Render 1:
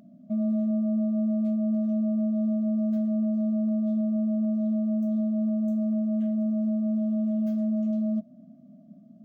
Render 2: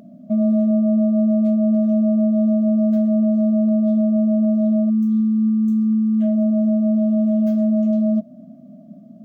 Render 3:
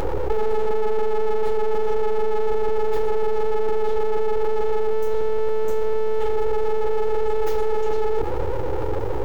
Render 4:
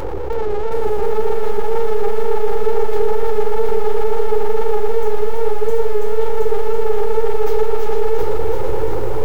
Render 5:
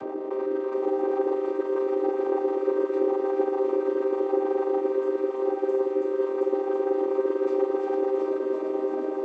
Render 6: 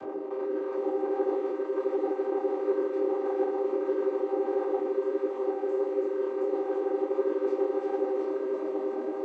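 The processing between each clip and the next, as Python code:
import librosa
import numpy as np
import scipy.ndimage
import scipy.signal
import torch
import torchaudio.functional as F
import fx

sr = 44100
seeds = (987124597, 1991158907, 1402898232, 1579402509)

y1 = fx.spec_erase(x, sr, start_s=4.89, length_s=1.32, low_hz=460.0, high_hz=970.0)
y1 = fx.peak_eq(y1, sr, hz=510.0, db=5.5, octaves=0.98)
y1 = y1 * 10.0 ** (8.0 / 20.0)
y2 = y1 + 0.84 * np.pad(y1, (int(7.1 * sr / 1000.0), 0))[:len(y1)]
y2 = np.abs(y2)
y2 = fx.env_flatten(y2, sr, amount_pct=70)
y2 = y2 * 10.0 ** (9.0 / 20.0)
y3 = fx.wow_flutter(y2, sr, seeds[0], rate_hz=2.1, depth_cents=88.0)
y3 = y3 + 10.0 ** (-4.5 / 20.0) * np.pad(y3, (int(330 * sr / 1000.0), 0))[:len(y3)]
y3 = fx.echo_crushed(y3, sr, ms=722, feedback_pct=35, bits=7, wet_db=-4.0)
y4 = fx.chord_vocoder(y3, sr, chord='minor triad', root=60)
y4 = y4 * 10.0 ** (-3.5 / 20.0)
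y5 = fx.echo_wet_highpass(y4, sr, ms=124, feedback_pct=80, hz=2100.0, wet_db=-16)
y5 = fx.detune_double(y5, sr, cents=52)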